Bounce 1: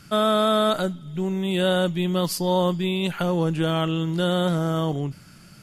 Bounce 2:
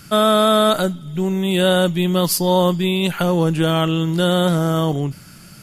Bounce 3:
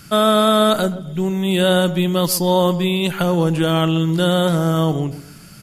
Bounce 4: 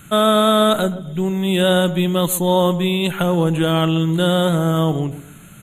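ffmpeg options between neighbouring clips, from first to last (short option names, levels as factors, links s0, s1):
-af "highshelf=f=9900:g=10,volume=1.88"
-filter_complex "[0:a]asplit=2[s0][s1];[s1]adelay=130,lowpass=f=1000:p=1,volume=0.224,asplit=2[s2][s3];[s3]adelay=130,lowpass=f=1000:p=1,volume=0.36,asplit=2[s4][s5];[s5]adelay=130,lowpass=f=1000:p=1,volume=0.36,asplit=2[s6][s7];[s7]adelay=130,lowpass=f=1000:p=1,volume=0.36[s8];[s0][s2][s4][s6][s8]amix=inputs=5:normalize=0"
-af "asuperstop=centerf=5100:order=12:qfactor=2.4"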